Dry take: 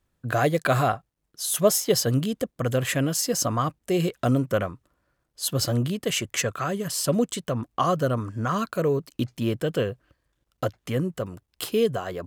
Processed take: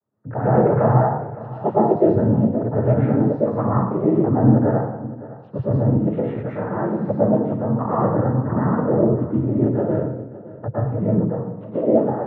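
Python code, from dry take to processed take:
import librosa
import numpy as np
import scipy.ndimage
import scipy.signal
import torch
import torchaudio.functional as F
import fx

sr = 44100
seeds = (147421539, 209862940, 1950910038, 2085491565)

p1 = fx.noise_vocoder(x, sr, seeds[0], bands=12)
p2 = scipy.signal.sosfilt(scipy.signal.bessel(4, 790.0, 'lowpass', norm='mag', fs=sr, output='sos'), p1)
p3 = p2 + fx.echo_single(p2, sr, ms=562, db=-17.0, dry=0)
y = fx.rev_plate(p3, sr, seeds[1], rt60_s=0.77, hf_ratio=0.75, predelay_ms=100, drr_db=-7.5)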